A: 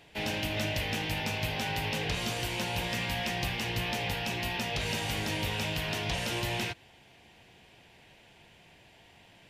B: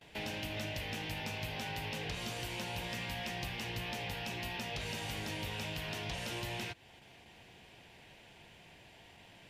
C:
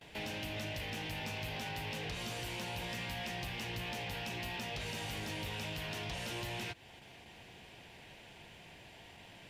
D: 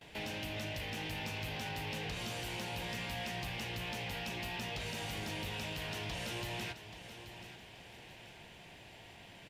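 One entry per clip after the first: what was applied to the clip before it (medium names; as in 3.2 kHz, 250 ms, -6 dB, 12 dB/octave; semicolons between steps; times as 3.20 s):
gate with hold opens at -48 dBFS; compression 2:1, threshold -43 dBFS, peak gain reduction 8.5 dB
in parallel at +0.5 dB: peak limiter -36.5 dBFS, peak gain reduction 9.5 dB; on the sum: saturation -28.5 dBFS, distortion -21 dB; trim -3.5 dB
feedback delay 831 ms, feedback 40%, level -12 dB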